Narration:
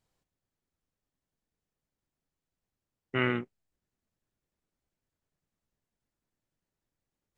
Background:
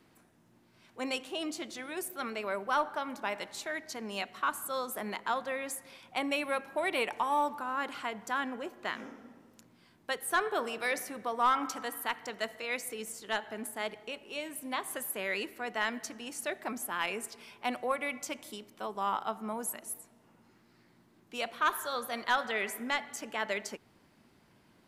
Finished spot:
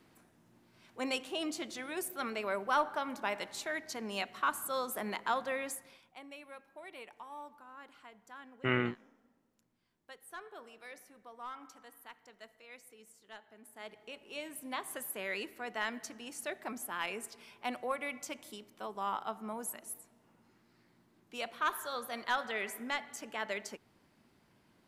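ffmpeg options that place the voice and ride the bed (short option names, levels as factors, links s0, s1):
-filter_complex "[0:a]adelay=5500,volume=0.75[s0];[1:a]volume=4.73,afade=t=out:st=5.6:d=0.55:silence=0.133352,afade=t=in:st=13.63:d=0.75:silence=0.199526[s1];[s0][s1]amix=inputs=2:normalize=0"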